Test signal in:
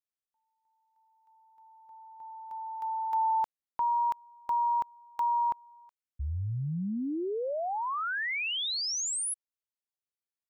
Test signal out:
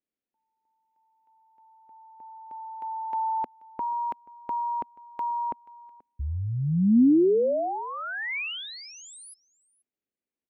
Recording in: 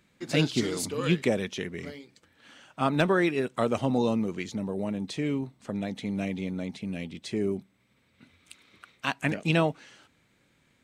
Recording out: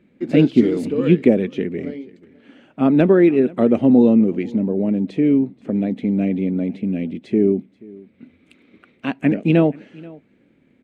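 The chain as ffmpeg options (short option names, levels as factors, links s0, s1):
-af "firequalizer=gain_entry='entry(110,0);entry(240,13);entry(1000,-6);entry(2300,-1);entry(3700,-10);entry(5600,-17)':delay=0.05:min_phase=1,aecho=1:1:482:0.0708,volume=1.41"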